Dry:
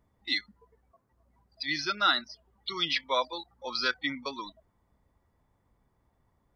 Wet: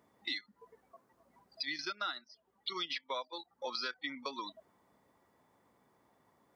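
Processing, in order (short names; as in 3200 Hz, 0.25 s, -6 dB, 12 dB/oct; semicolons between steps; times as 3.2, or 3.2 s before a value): HPF 240 Hz 12 dB/oct; 1.65–3.83 transient shaper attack -1 dB, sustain -8 dB; compressor 6:1, threshold -43 dBFS, peak gain reduction 21.5 dB; gain +6 dB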